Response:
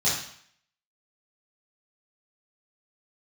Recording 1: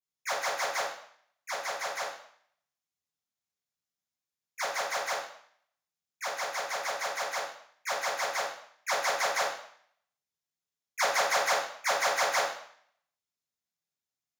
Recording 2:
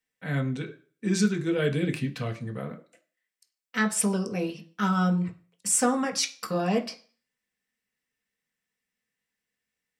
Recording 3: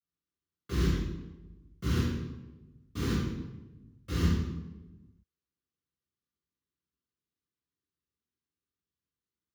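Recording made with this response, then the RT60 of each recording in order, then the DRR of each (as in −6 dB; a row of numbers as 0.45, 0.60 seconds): 1; 0.60, 0.40, 1.1 seconds; −10.0, 3.0, −10.5 decibels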